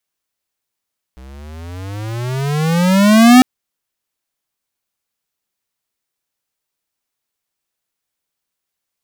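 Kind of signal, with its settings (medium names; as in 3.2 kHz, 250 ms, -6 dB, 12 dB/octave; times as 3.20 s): gliding synth tone square, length 2.25 s, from 62.7 Hz, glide +24.5 st, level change +32 dB, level -4.5 dB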